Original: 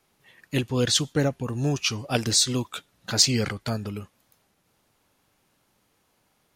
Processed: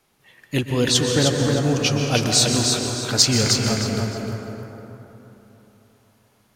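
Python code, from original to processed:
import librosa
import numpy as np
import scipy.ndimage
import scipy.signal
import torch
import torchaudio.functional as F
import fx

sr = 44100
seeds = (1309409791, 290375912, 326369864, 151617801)

y = fx.echo_feedback(x, sr, ms=309, feedback_pct=26, wet_db=-5.0)
y = fx.rev_plate(y, sr, seeds[0], rt60_s=3.5, hf_ratio=0.4, predelay_ms=110, drr_db=2.5)
y = y * 10.0 ** (3.0 / 20.0)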